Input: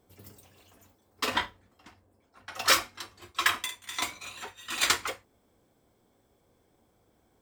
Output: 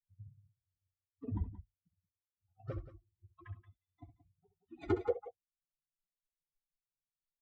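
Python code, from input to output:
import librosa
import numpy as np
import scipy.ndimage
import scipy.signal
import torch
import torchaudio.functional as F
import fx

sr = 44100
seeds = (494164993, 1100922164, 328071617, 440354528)

y = fx.bin_expand(x, sr, power=3.0)
y = fx.echo_multitap(y, sr, ms=(66, 177), db=(-13.5, -15.0))
y = fx.filter_sweep_lowpass(y, sr, from_hz=120.0, to_hz=5800.0, start_s=4.4, end_s=6.27, q=1.8)
y = y * 10.0 ** (14.0 / 20.0)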